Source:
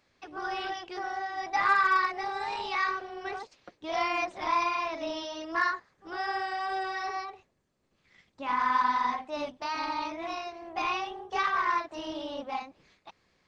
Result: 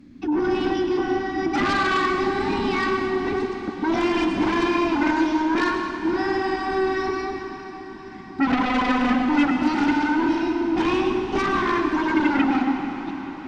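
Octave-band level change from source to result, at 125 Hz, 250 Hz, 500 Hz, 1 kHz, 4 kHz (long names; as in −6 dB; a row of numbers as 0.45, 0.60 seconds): can't be measured, +22.5 dB, +13.5 dB, +4.0 dB, +7.0 dB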